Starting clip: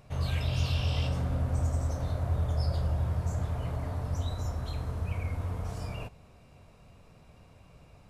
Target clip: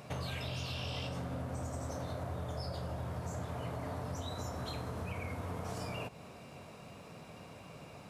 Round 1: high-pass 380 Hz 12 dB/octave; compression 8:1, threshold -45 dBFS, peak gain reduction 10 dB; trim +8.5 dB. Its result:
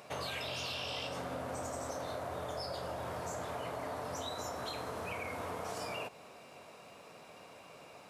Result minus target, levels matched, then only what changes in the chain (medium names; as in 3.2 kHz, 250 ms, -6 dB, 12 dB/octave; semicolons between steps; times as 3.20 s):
125 Hz band -10.5 dB
change: high-pass 160 Hz 12 dB/octave